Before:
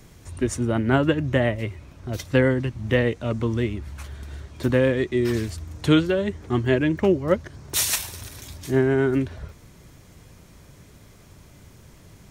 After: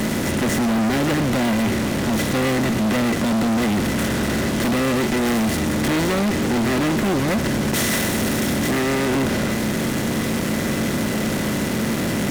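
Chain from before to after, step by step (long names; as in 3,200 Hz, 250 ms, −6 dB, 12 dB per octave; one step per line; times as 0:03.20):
compressor on every frequency bin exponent 0.4
bass and treble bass +1 dB, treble −3 dB
hollow resonant body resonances 220/2,000 Hz, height 14 dB, ringing for 80 ms
fuzz pedal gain 26 dB, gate −28 dBFS
level −4.5 dB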